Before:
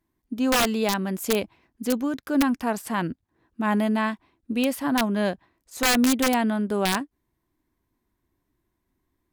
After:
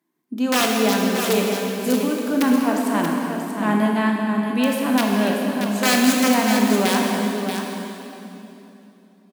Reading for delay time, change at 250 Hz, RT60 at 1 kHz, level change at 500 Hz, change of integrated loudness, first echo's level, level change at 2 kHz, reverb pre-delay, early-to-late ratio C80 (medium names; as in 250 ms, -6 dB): 633 ms, +5.5 dB, 2.8 s, +5.5 dB, +4.5 dB, -7.5 dB, +5.0 dB, 16 ms, 0.0 dB